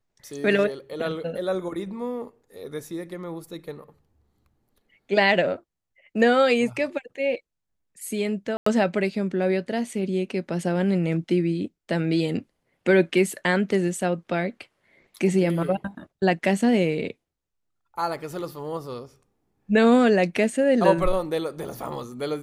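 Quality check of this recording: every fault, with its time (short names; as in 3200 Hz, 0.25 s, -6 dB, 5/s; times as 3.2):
8.57–8.66 gap 94 ms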